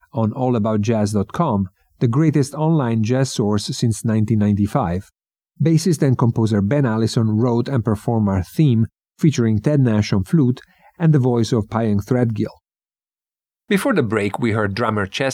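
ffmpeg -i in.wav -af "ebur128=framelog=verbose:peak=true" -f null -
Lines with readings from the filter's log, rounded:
Integrated loudness:
  I:         -18.6 LUFS
  Threshold: -28.8 LUFS
Loudness range:
  LRA:         3.0 LU
  Threshold: -38.9 LUFS
  LRA low:   -20.9 LUFS
  LRA high:  -17.9 LUFS
True peak:
  Peak:       -1.6 dBFS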